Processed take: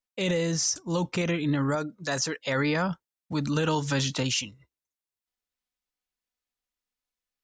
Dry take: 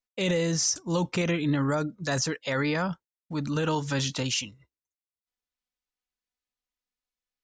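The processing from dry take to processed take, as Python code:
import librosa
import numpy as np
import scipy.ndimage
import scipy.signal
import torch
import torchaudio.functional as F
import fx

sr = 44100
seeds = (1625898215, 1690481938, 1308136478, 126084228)

y = fx.rider(x, sr, range_db=3, speed_s=2.0)
y = fx.low_shelf(y, sr, hz=180.0, db=-10.0, at=(1.75, 2.39))
y = fx.band_squash(y, sr, depth_pct=40, at=(3.32, 4.34))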